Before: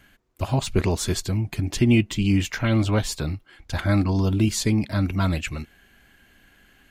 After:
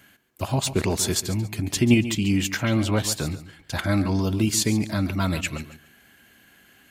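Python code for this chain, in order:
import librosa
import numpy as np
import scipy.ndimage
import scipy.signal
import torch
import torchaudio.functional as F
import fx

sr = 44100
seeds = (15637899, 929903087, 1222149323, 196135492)

p1 = fx.echo_feedback(x, sr, ms=139, feedback_pct=25, wet_db=-14)
p2 = fx.level_steps(p1, sr, step_db=15)
p3 = p1 + (p2 * 10.0 ** (-2.0 / 20.0))
p4 = scipy.signal.sosfilt(scipy.signal.butter(2, 100.0, 'highpass', fs=sr, output='sos'), p3)
p5 = fx.high_shelf(p4, sr, hz=7100.0, db=8.0)
y = p5 * 10.0 ** (-2.5 / 20.0)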